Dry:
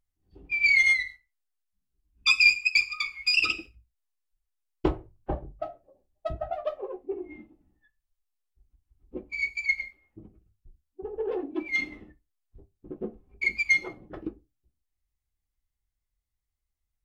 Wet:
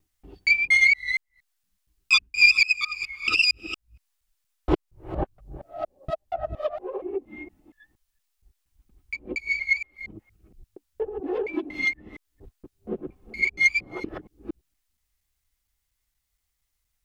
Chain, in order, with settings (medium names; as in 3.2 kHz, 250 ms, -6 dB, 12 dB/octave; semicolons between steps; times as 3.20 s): time reversed locally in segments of 234 ms; tape noise reduction on one side only encoder only; trim +3 dB